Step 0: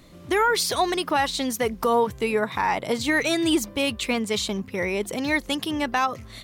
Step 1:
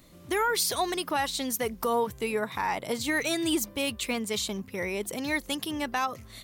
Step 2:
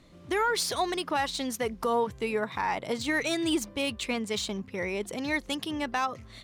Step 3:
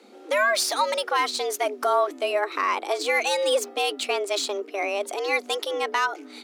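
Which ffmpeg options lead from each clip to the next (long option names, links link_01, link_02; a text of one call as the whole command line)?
ffmpeg -i in.wav -af "highshelf=frequency=8700:gain=11.5,volume=-6dB" out.wav
ffmpeg -i in.wav -af "adynamicsmooth=sensitivity=3.5:basefreq=6200" out.wav
ffmpeg -i in.wav -af "afreqshift=200,volume=5dB" out.wav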